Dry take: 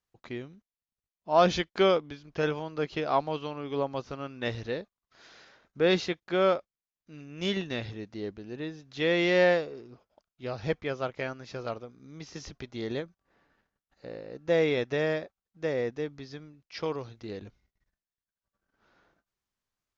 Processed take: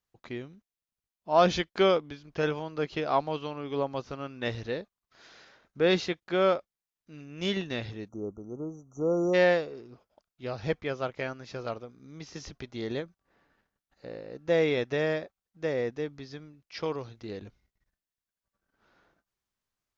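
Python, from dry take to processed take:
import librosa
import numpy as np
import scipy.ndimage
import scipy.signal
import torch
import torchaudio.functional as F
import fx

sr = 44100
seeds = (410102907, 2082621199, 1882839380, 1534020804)

y = fx.spec_erase(x, sr, start_s=8.09, length_s=1.25, low_hz=1400.0, high_hz=5700.0)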